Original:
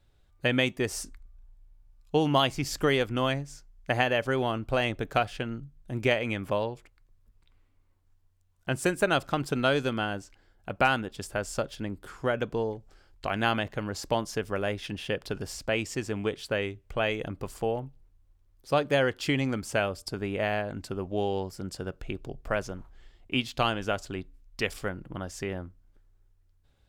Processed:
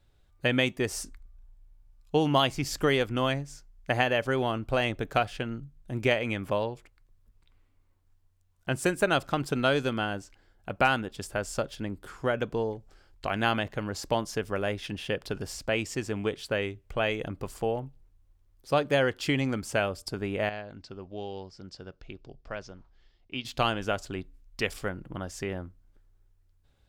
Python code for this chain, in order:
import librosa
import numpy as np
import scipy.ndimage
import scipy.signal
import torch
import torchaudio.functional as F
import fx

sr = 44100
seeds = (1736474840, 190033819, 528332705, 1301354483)

y = fx.ladder_lowpass(x, sr, hz=6000.0, resonance_pct=45, at=(20.49, 23.45))